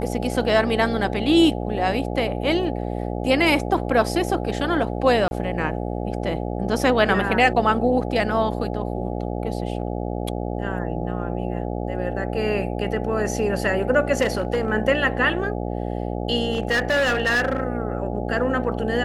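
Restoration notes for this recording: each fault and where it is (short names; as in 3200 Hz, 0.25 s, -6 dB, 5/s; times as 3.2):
buzz 60 Hz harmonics 14 -27 dBFS
5.28–5.31 gap 31 ms
14.21–14.7 clipped -16.5 dBFS
16.5–17.6 clipped -16.5 dBFS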